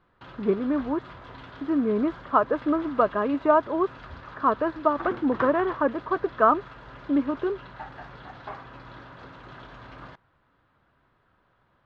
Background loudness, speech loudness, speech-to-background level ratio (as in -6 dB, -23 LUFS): -42.0 LUFS, -25.0 LUFS, 17.0 dB